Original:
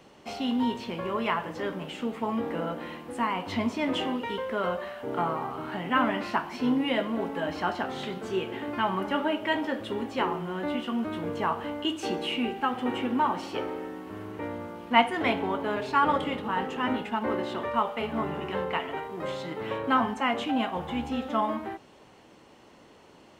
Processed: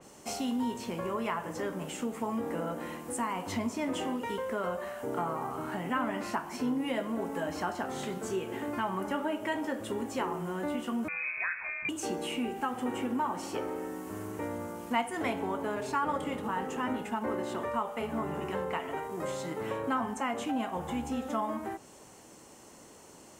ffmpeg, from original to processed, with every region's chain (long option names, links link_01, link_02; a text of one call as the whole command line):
ffmpeg -i in.wav -filter_complex "[0:a]asettb=1/sr,asplit=3[link_01][link_02][link_03];[link_01]atrim=end=11.084[link_04];[link_02]atrim=start=11.08:end=11.89,asetpts=PTS-STARTPTS,afade=type=in:duration=0.004:curve=qsin,afade=type=out:start_time=0.806:duration=0.004:curve=qsin,equalizer=frequency=180:width_type=o:width=0.67:gain=8.5,lowpass=frequency=2300:width_type=q:width=0.5098,lowpass=frequency=2300:width_type=q:width=0.6013,lowpass=frequency=2300:width_type=q:width=0.9,lowpass=frequency=2300:width_type=q:width=2.563,afreqshift=-2700[link_05];[link_03]atrim=start=11.886[link_06];[link_04][link_05]acrossfade=duration=0.004:curve1=hsin:curve2=qsin[link_07];[link_07][link_06]acrossfade=duration=0.004:curve1=qsin:curve2=hsin,highshelf=frequency=5200:width_type=q:width=1.5:gain=13.5,acompressor=threshold=-32dB:ratio=2,adynamicequalizer=threshold=0.00316:dfrequency=3200:dqfactor=0.7:tfrequency=3200:tqfactor=0.7:attack=5:release=100:ratio=0.375:range=3:mode=cutabove:tftype=highshelf" out.wav